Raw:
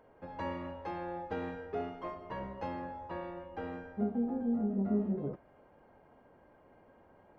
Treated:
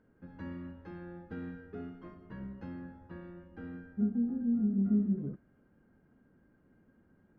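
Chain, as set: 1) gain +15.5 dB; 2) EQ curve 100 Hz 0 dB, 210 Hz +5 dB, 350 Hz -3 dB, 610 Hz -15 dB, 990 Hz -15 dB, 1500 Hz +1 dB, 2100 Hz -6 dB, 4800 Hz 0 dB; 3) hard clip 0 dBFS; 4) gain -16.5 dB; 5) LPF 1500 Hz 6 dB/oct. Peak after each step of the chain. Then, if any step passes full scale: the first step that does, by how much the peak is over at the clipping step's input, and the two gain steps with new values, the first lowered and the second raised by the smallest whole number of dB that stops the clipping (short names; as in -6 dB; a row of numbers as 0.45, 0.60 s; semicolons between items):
-5.0, -3.0, -3.0, -19.5, -19.5 dBFS; no overload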